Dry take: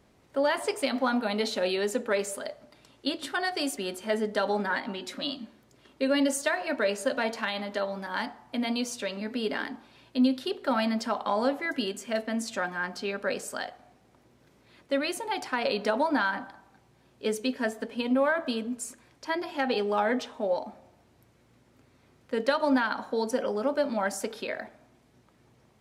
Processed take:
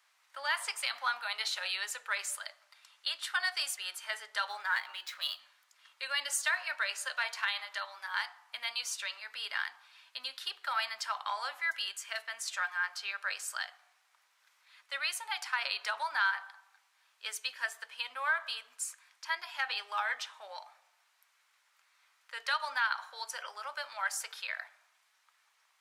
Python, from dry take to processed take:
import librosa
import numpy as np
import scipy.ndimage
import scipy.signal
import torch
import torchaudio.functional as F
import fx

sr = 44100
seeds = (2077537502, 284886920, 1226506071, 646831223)

y = fx.median_filter(x, sr, points=5, at=(4.49, 5.4))
y = scipy.signal.sosfilt(scipy.signal.butter(4, 1100.0, 'highpass', fs=sr, output='sos'), y)